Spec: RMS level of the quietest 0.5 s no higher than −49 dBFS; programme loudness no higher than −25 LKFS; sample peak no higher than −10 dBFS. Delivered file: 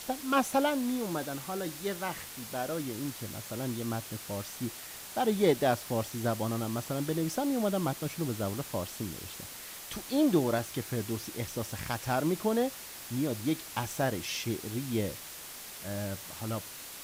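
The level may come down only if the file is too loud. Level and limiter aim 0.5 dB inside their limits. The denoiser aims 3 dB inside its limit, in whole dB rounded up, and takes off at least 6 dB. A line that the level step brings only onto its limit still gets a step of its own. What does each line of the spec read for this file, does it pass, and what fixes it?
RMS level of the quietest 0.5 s −45 dBFS: out of spec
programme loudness −33.0 LKFS: in spec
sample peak −13.5 dBFS: in spec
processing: broadband denoise 7 dB, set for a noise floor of −45 dBFS

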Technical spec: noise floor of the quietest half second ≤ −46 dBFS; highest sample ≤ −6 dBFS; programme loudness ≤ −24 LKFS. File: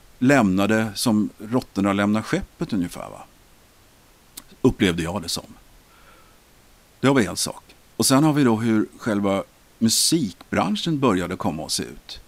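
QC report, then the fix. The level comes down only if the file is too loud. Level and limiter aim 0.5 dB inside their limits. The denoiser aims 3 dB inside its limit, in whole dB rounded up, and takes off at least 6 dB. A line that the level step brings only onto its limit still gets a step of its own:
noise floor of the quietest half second −53 dBFS: in spec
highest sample −5.5 dBFS: out of spec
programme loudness −21.5 LKFS: out of spec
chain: level −3 dB

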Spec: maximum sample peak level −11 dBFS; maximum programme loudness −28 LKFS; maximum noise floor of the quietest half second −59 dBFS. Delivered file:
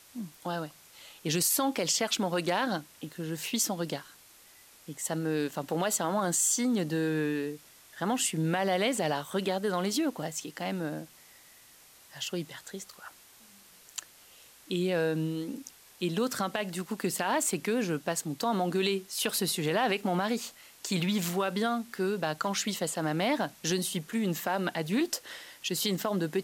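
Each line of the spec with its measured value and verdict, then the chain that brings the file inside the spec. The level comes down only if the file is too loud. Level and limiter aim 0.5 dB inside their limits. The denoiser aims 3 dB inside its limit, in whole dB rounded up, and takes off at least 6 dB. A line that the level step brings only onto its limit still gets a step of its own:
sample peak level −13.5 dBFS: in spec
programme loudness −30.5 LKFS: in spec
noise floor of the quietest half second −56 dBFS: out of spec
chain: broadband denoise 6 dB, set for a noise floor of −56 dBFS

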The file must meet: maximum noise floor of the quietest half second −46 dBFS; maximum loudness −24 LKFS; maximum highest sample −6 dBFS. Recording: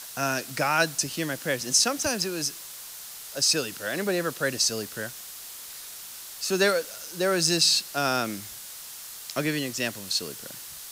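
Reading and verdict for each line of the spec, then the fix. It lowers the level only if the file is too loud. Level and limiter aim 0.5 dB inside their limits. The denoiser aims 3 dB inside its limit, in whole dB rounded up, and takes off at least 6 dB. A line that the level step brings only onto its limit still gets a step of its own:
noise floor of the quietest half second −41 dBFS: out of spec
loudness −25.5 LKFS: in spec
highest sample −7.5 dBFS: in spec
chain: broadband denoise 8 dB, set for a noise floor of −41 dBFS

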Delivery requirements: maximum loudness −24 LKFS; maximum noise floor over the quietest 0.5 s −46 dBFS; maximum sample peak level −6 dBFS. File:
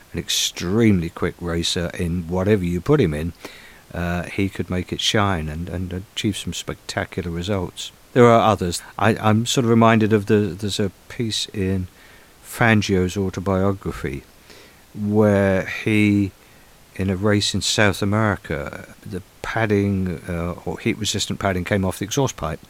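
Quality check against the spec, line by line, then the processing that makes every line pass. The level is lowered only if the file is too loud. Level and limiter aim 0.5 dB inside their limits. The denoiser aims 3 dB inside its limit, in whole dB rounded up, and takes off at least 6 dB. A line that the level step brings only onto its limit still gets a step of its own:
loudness −20.5 LKFS: out of spec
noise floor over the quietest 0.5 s −49 dBFS: in spec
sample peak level −2.0 dBFS: out of spec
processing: level −4 dB
brickwall limiter −6.5 dBFS

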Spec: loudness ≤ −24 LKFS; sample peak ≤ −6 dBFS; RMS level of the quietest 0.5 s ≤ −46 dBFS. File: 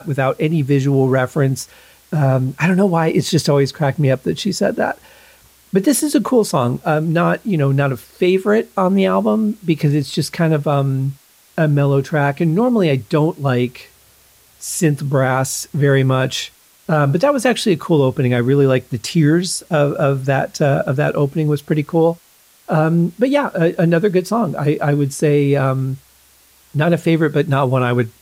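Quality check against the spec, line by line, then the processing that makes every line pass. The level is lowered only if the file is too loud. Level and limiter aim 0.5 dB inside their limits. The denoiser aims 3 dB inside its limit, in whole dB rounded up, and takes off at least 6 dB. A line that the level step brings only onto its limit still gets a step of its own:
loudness −16.5 LKFS: out of spec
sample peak −3.5 dBFS: out of spec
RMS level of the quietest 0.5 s −51 dBFS: in spec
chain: level −8 dB

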